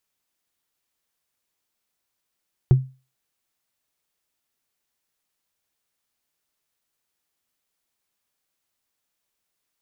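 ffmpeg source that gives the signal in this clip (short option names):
-f lavfi -i "aevalsrc='0.447*pow(10,-3*t/0.31)*sin(2*PI*131*t)+0.112*pow(10,-3*t/0.092)*sin(2*PI*361.2*t)+0.0282*pow(10,-3*t/0.041)*sin(2*PI*707.9*t)+0.00708*pow(10,-3*t/0.022)*sin(2*PI*1170.2*t)+0.00178*pow(10,-3*t/0.014)*sin(2*PI*1747.5*t)':d=0.45:s=44100"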